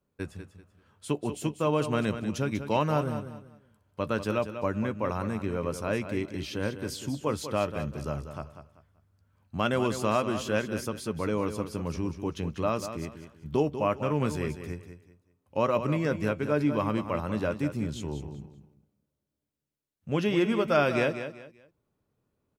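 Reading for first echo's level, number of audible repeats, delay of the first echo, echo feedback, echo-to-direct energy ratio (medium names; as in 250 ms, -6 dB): -10.0 dB, 3, 193 ms, 28%, -9.5 dB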